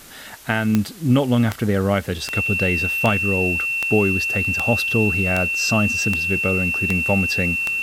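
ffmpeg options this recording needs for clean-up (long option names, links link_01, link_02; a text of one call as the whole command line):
ffmpeg -i in.wav -af "adeclick=threshold=4,bandreject=frequency=2700:width=30,afwtdn=0.0071" out.wav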